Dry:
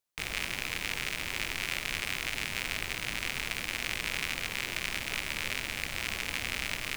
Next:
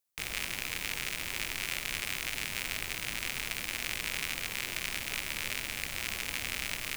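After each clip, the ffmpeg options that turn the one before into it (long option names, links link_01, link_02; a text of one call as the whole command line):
ffmpeg -i in.wav -af "highshelf=frequency=6800:gain=8.5,volume=-3dB" out.wav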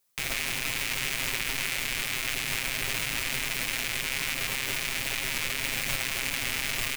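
ffmpeg -i in.wav -af "aecho=1:1:7.5:0.77,alimiter=limit=-22dB:level=0:latency=1:release=68,volume=9dB" out.wav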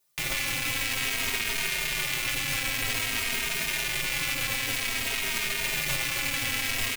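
ffmpeg -i in.wav -filter_complex "[0:a]asplit=2[link_01][link_02];[link_02]adelay=2.9,afreqshift=-0.52[link_03];[link_01][link_03]amix=inputs=2:normalize=1,volume=4.5dB" out.wav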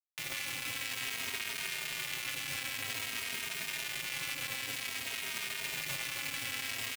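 ffmpeg -i in.wav -af "highpass=89,aeval=exprs='sgn(val(0))*max(abs(val(0))-0.0141,0)':channel_layout=same,volume=-6.5dB" out.wav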